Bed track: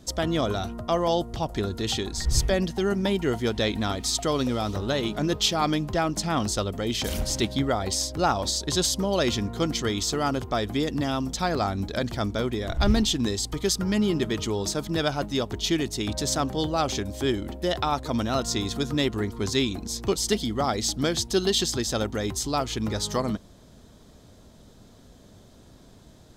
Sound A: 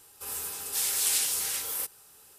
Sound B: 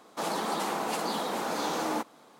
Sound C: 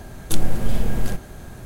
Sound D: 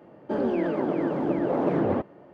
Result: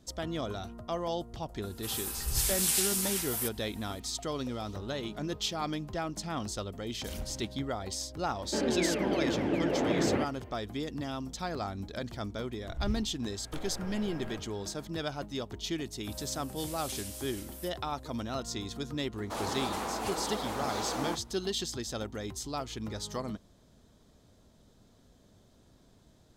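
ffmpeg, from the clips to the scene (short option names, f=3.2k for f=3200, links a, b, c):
-filter_complex "[1:a]asplit=2[a][b];[0:a]volume=-10dB[c];[4:a]highshelf=f=1.6k:t=q:w=1.5:g=9.5[d];[3:a]acrossover=split=360 3000:gain=0.112 1 0.126[e][f][g];[e][f][g]amix=inputs=3:normalize=0[h];[2:a]flanger=delay=2.1:depth=3:regen=-64:speed=0.92:shape=sinusoidal[i];[a]atrim=end=2.38,asetpts=PTS-STARTPTS,volume=-2dB,afade=t=in:d=0.004:c=hsin,afade=t=out:st=2.376:d=0.004:c=hsin,adelay=1620[j];[d]atrim=end=2.33,asetpts=PTS-STARTPTS,volume=-4dB,afade=t=in:d=0.004:c=hsin,afade=t=out:st=2.326:d=0.004:c=hsin,adelay=8230[k];[h]atrim=end=1.65,asetpts=PTS-STARTPTS,volume=-9.5dB,afade=t=in:d=0.004:c=hsin,afade=t=out:st=1.646:d=0.004:c=hsin,adelay=13220[l];[b]atrim=end=2.38,asetpts=PTS-STARTPTS,volume=-16dB,afade=t=in:d=0.004:c=hsin,afade=t=out:st=2.376:d=0.004:c=hsin,adelay=15830[m];[i]atrim=end=2.39,asetpts=PTS-STARTPTS,afade=t=in:d=0.004:c=hsin,afade=t=out:st=2.386:d=0.004:c=hsin,adelay=19130[n];[c][j][k][l][m][n]amix=inputs=6:normalize=0"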